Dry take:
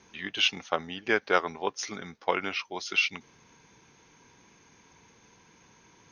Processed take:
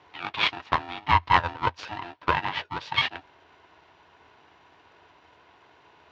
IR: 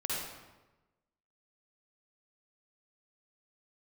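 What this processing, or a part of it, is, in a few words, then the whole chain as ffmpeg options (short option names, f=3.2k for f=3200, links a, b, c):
ring modulator pedal into a guitar cabinet: -af "aeval=exprs='val(0)*sgn(sin(2*PI*520*n/s))':c=same,highpass=78,equalizer=f=85:t=q:w=4:g=8,equalizer=f=210:t=q:w=4:g=-9,equalizer=f=980:t=q:w=4:g=9,lowpass=f=3.8k:w=0.5412,lowpass=f=3.8k:w=1.3066,volume=1.5dB"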